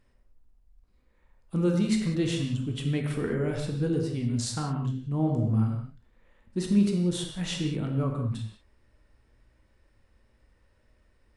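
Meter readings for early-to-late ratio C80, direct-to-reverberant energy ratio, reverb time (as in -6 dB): 5.5 dB, 1.5 dB, not exponential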